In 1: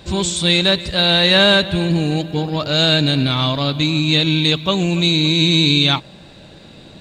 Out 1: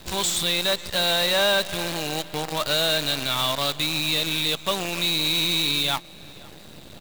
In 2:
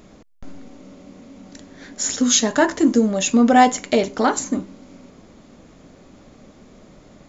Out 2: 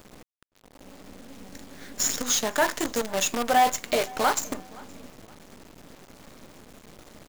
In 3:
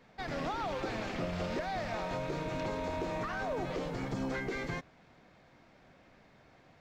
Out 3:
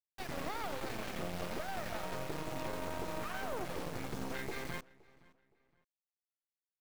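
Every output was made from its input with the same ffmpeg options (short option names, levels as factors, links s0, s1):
-filter_complex "[0:a]acrossover=split=540|960[s0][s1][s2];[s0]acompressor=threshold=0.0224:ratio=10[s3];[s2]alimiter=limit=0.237:level=0:latency=1:release=386[s4];[s3][s1][s4]amix=inputs=3:normalize=0,acrusher=bits=5:dc=4:mix=0:aa=0.000001,asoftclip=type=tanh:threshold=0.211,asplit=2[s5][s6];[s6]adelay=518,lowpass=f=3900:p=1,volume=0.0708,asplit=2[s7][s8];[s8]adelay=518,lowpass=f=3900:p=1,volume=0.32[s9];[s5][s7][s9]amix=inputs=3:normalize=0"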